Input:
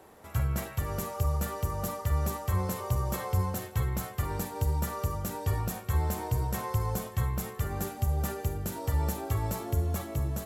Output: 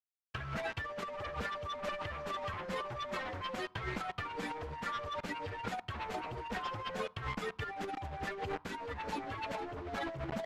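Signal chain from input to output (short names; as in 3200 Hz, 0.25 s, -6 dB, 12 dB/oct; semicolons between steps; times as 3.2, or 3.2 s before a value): per-bin expansion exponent 3; HPF 660 Hz 6 dB/oct; in parallel at -10 dB: sine folder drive 20 dB, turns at -27.5 dBFS; on the sum: bit-crush 7-bit; LPF 2300 Hz 12 dB/oct; negative-ratio compressor -42 dBFS, ratio -0.5; on a send at -22.5 dB: bell 990 Hz +13.5 dB 0.57 oct + reverb RT60 0.65 s, pre-delay 5 ms; on the sum: gain +3.5 dB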